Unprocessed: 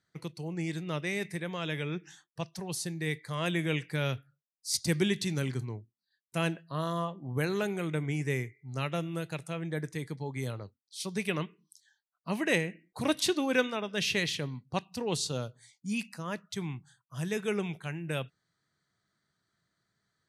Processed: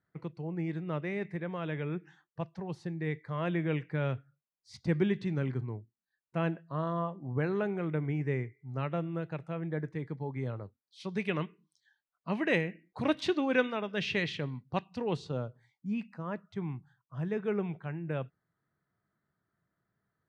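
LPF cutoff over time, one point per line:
10.64 s 1600 Hz
11.12 s 2700 Hz
14.98 s 2700 Hz
15.4 s 1400 Hz

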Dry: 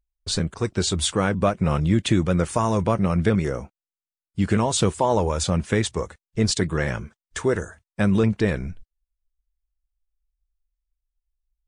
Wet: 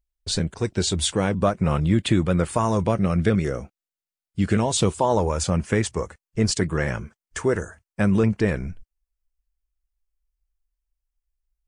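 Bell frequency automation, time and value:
bell -8.5 dB 0.3 oct
1.23 s 1200 Hz
1.79 s 6000 Hz
2.56 s 6000 Hz
2.96 s 930 Hz
4.53 s 930 Hz
5.38 s 3700 Hz

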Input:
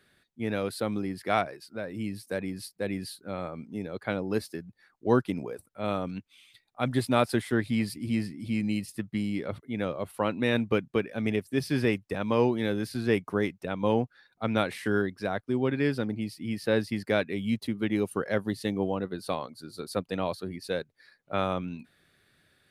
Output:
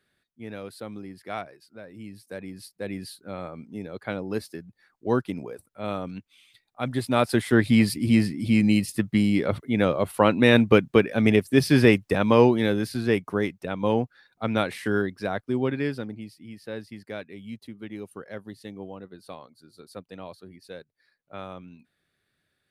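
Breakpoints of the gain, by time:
2.04 s -7.5 dB
2.99 s -0.5 dB
7 s -0.5 dB
7.68 s +9 dB
12.13 s +9 dB
13.2 s +2 dB
15.63 s +2 dB
16.51 s -10 dB

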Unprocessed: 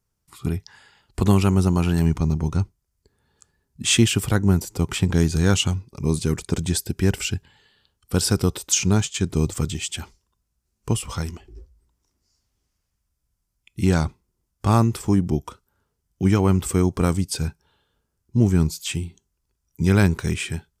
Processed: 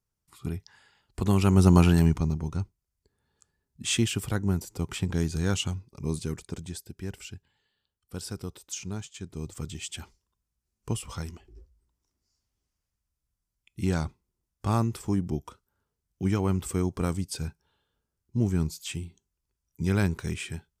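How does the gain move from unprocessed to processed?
1.25 s -8 dB
1.76 s +3 dB
2.44 s -8.5 dB
6.16 s -8.5 dB
6.83 s -16.5 dB
9.33 s -16.5 dB
9.88 s -8 dB

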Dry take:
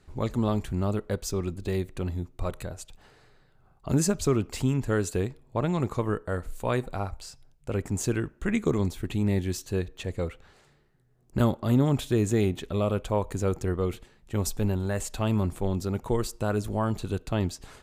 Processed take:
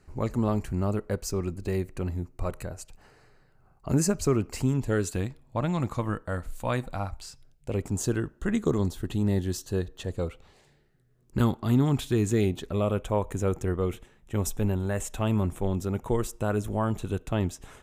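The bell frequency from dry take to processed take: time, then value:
bell -14 dB 0.25 oct
4.65 s 3500 Hz
5.17 s 410 Hz
7.08 s 410 Hz
8 s 2300 Hz
10.05 s 2300 Hz
11.57 s 550 Hz
12.28 s 550 Hz
12.77 s 4500 Hz

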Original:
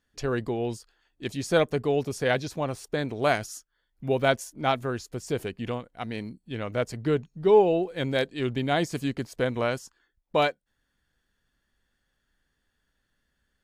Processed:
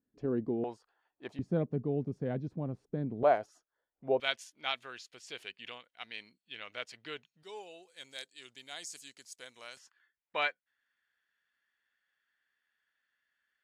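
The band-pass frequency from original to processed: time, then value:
band-pass, Q 1.6
260 Hz
from 0.64 s 860 Hz
from 1.39 s 190 Hz
from 3.23 s 630 Hz
from 4.2 s 3000 Hz
from 7.43 s 7400 Hz
from 9.77 s 2000 Hz

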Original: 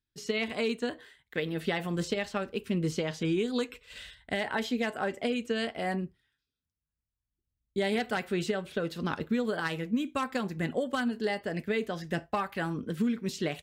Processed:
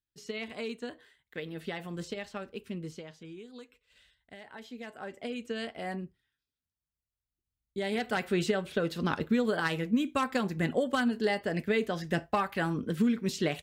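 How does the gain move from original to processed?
2.66 s -7 dB
3.27 s -17.5 dB
4.41 s -17.5 dB
5.46 s -5 dB
7.77 s -5 dB
8.26 s +2 dB

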